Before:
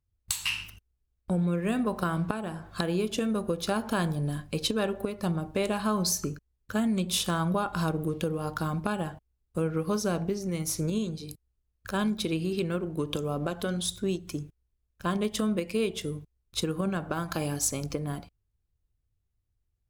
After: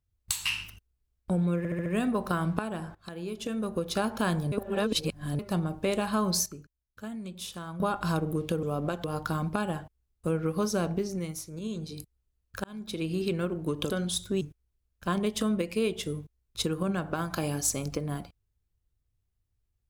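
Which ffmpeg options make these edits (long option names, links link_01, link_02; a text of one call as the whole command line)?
ffmpeg -i in.wav -filter_complex "[0:a]asplit=16[link_01][link_02][link_03][link_04][link_05][link_06][link_07][link_08][link_09][link_10][link_11][link_12][link_13][link_14][link_15][link_16];[link_01]atrim=end=1.652[link_17];[link_02]atrim=start=1.578:end=1.652[link_18];[link_03]atrim=start=1.578:end=1.652[link_19];[link_04]atrim=start=1.578:end=1.652[link_20];[link_05]atrim=start=1.578:end=2.67,asetpts=PTS-STARTPTS,afade=type=out:start_time=1.088:duration=0.004:curve=hsin:silence=0.112202[link_21];[link_06]atrim=start=2.67:end=4.242,asetpts=PTS-STARTPTS,afade=type=in:duration=1.01:silence=0.112202[link_22];[link_07]atrim=start=4.238:end=5.112,asetpts=PTS-STARTPTS,areverse[link_23];[link_08]atrim=start=5.108:end=6.182[link_24];[link_09]atrim=start=6.178:end=7.522,asetpts=PTS-STARTPTS,volume=-11.5dB[link_25];[link_10]atrim=start=7.518:end=8.352[link_26];[link_11]atrim=start=13.208:end=13.622[link_27];[link_12]atrim=start=8.348:end=10.81,asetpts=PTS-STARTPTS,afade=type=out:start_time=2.062:duration=0.4:silence=0.177828[link_28];[link_13]atrim=start=10.81:end=11.95,asetpts=PTS-STARTPTS,afade=type=in:duration=0.4:silence=0.177828,afade=type=out:start_time=1.136:duration=0.004:curve=hsin[link_29];[link_14]atrim=start=11.95:end=13.212,asetpts=PTS-STARTPTS,afade=type=in:duration=0.53[link_30];[link_15]atrim=start=13.618:end=14.132[link_31];[link_16]atrim=start=14.388[link_32];[link_17][link_18]acrossfade=duration=0.004:curve1=hsin:curve2=hsin[link_33];[link_33][link_19]acrossfade=duration=0.004:curve1=hsin:curve2=hsin[link_34];[link_34][link_20]acrossfade=duration=0.004:curve1=hsin:curve2=hsin[link_35];[link_21][link_22]concat=n=2:v=0:a=1[link_36];[link_35][link_36]acrossfade=duration=0.004:curve1=hsin:curve2=hsin[link_37];[link_37][link_23]acrossfade=duration=0.004:curve1=hsin:curve2=hsin[link_38];[link_38][link_24]acrossfade=duration=0.004:curve1=hsin:curve2=hsin[link_39];[link_39][link_25]acrossfade=duration=0.004:curve1=hsin:curve2=hsin[link_40];[link_40][link_26]acrossfade=duration=0.004:curve1=hsin:curve2=hsin[link_41];[link_41][link_27]acrossfade=duration=0.004:curve1=hsin:curve2=hsin[link_42];[link_28][link_29][link_30]concat=n=3:v=0:a=1[link_43];[link_42][link_43]acrossfade=duration=0.004:curve1=hsin:curve2=hsin[link_44];[link_44][link_31]acrossfade=duration=0.004:curve1=hsin:curve2=hsin[link_45];[link_45][link_32]acrossfade=duration=0.004:curve1=hsin:curve2=hsin" out.wav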